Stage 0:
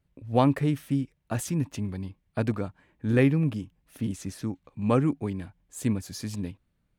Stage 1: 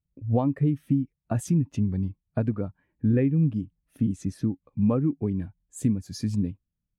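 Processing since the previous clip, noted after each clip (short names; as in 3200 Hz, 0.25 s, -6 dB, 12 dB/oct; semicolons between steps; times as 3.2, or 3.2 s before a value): compressor 6:1, threshold -30 dBFS, peak gain reduction 13.5 dB; spectral expander 1.5:1; gain +8 dB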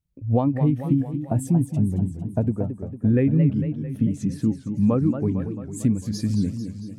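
spectral gain 1.18–2.91, 1000–7200 Hz -10 dB; warbling echo 0.224 s, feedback 59%, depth 203 cents, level -9 dB; gain +3 dB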